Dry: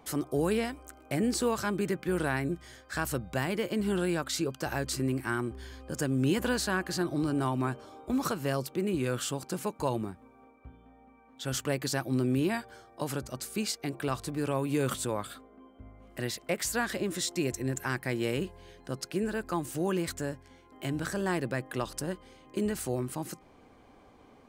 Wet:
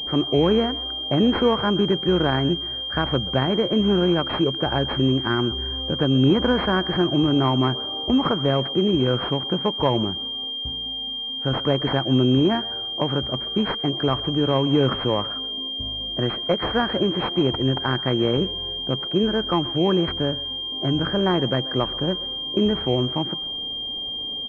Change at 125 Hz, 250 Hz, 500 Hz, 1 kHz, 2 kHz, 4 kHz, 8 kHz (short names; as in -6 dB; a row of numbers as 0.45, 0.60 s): +10.0 dB, +10.0 dB, +10.0 dB, +9.5 dB, +4.5 dB, +19.5 dB, under -20 dB